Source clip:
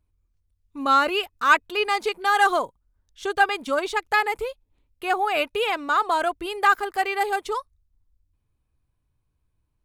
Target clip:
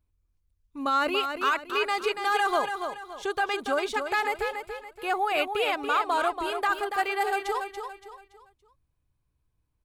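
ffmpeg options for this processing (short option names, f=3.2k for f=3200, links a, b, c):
-af "alimiter=limit=-14dB:level=0:latency=1:release=27,aecho=1:1:284|568|852|1136:0.447|0.161|0.0579|0.0208,volume=-3dB"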